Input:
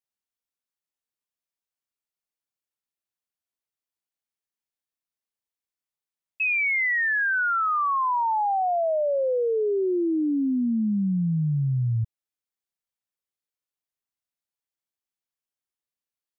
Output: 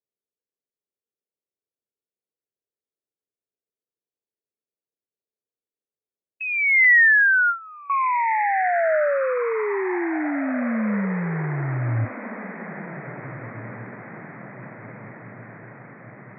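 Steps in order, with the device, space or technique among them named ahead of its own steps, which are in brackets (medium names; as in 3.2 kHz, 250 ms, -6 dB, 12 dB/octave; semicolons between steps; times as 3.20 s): bass shelf 310 Hz -5.5 dB; envelope filter bass rig (touch-sensitive low-pass 430–2000 Hz up, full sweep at -31 dBFS; cabinet simulation 69–2100 Hz, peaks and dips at 110 Hz +8 dB, 210 Hz +4 dB, 620 Hz +4 dB); echo that smears into a reverb 1631 ms, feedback 60%, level -13 dB; 6.84–7.90 s: gate with hold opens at -12 dBFS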